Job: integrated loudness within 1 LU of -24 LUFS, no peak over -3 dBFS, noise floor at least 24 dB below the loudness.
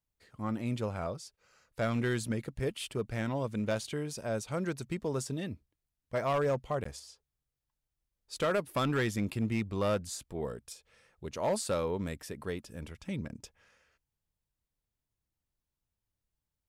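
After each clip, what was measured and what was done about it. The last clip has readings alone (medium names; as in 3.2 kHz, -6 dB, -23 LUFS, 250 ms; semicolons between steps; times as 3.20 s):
clipped samples 0.6%; clipping level -24.0 dBFS; dropouts 1; longest dropout 14 ms; loudness -34.5 LUFS; peak level -24.0 dBFS; loudness target -24.0 LUFS
-> clip repair -24 dBFS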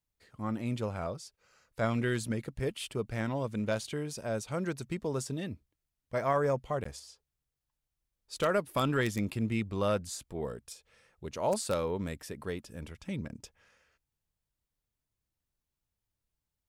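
clipped samples 0.0%; dropouts 1; longest dropout 14 ms
-> interpolate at 6.84 s, 14 ms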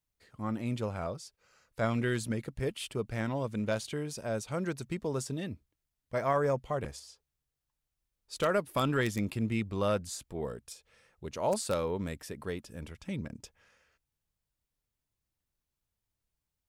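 dropouts 0; loudness -34.0 LUFS; peak level -15.0 dBFS; loudness target -24.0 LUFS
-> trim +10 dB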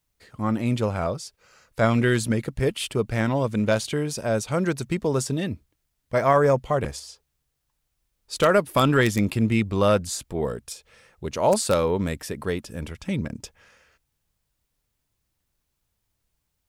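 loudness -24.0 LUFS; peak level -5.0 dBFS; noise floor -77 dBFS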